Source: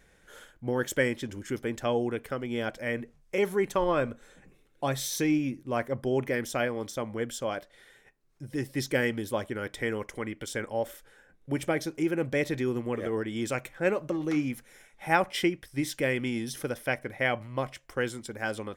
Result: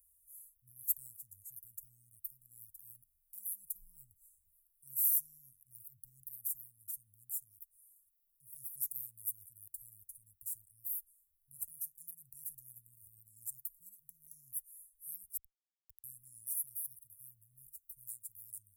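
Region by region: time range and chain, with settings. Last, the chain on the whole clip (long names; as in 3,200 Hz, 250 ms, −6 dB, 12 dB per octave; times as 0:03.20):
0:15.37–0:16.04: downward compressor 4 to 1, threshold −39 dBFS + low-shelf EQ 470 Hz −11.5 dB + comparator with hysteresis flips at −32 dBFS
whole clip: inverse Chebyshev band-stop filter 320–3,400 Hz, stop band 70 dB; RIAA equalisation recording; level −1.5 dB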